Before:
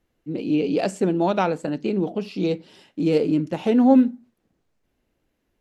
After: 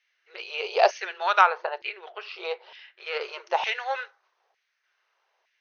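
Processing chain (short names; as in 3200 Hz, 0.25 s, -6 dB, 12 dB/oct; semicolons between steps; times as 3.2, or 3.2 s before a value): 1.41–3.21 air absorption 230 m; FFT band-pass 350–6500 Hz; LFO high-pass saw down 1.1 Hz 770–2200 Hz; gain +5 dB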